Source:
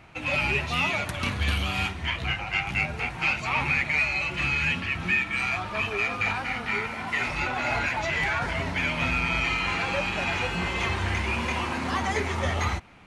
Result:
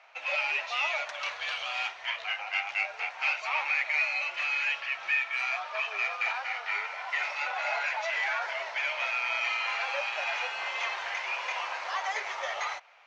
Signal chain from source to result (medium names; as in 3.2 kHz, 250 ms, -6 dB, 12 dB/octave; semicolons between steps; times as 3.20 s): elliptic band-pass 600–6100 Hz, stop band 40 dB; trim -3 dB